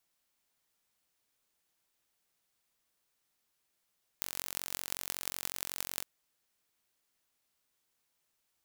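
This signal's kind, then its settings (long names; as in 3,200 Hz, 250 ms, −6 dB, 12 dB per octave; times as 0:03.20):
impulse train 45.4 per second, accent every 8, −5.5 dBFS 1.81 s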